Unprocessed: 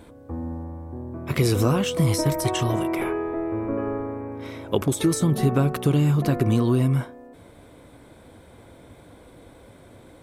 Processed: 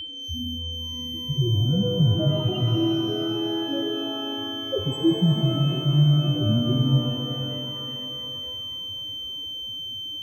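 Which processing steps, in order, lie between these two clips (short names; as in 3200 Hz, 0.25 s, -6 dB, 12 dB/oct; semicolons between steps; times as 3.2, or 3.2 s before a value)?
in parallel at -4.5 dB: hard clip -18 dBFS, distortion -13 dB; on the sum: loudest bins only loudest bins 2; low-pass opened by the level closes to 470 Hz, open at -18 dBFS; whine 3100 Hz -30 dBFS; shimmer reverb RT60 3.3 s, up +12 st, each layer -8 dB, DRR 5.5 dB; gain -1 dB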